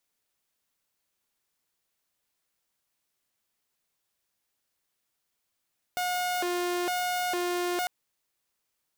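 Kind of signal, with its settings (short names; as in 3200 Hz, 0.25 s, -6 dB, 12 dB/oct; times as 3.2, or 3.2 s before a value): siren hi-lo 354–721 Hz 1.1/s saw -24.5 dBFS 1.90 s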